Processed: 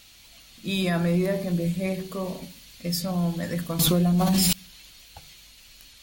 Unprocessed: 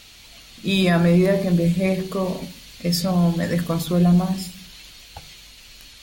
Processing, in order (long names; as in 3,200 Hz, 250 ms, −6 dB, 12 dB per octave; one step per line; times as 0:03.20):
high-shelf EQ 9,100 Hz +7.5 dB
notch filter 430 Hz, Q 12
0:03.79–0:04.53: envelope flattener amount 100%
level −7 dB